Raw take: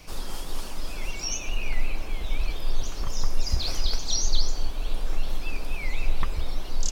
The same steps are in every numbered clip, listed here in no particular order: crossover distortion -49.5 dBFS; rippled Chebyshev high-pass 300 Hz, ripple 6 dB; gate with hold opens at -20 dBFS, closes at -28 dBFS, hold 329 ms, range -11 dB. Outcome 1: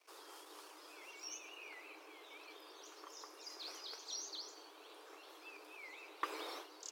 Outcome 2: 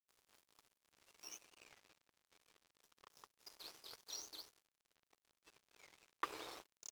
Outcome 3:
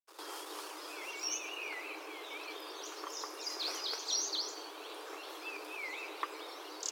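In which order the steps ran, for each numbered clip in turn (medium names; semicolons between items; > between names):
crossover distortion > rippled Chebyshev high-pass > gate with hold; rippled Chebyshev high-pass > gate with hold > crossover distortion; gate with hold > crossover distortion > rippled Chebyshev high-pass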